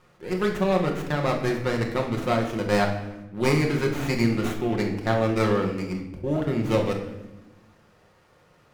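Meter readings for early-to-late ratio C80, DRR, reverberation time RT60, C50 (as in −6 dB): 9.5 dB, 1.0 dB, 1.0 s, 7.0 dB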